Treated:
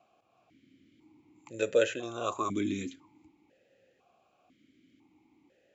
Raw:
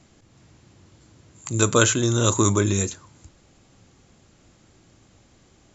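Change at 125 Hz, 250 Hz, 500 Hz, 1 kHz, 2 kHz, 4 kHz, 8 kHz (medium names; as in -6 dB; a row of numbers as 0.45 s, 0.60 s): -23.5 dB, -11.5 dB, -6.0 dB, -8.5 dB, -11.0 dB, -14.5 dB, no reading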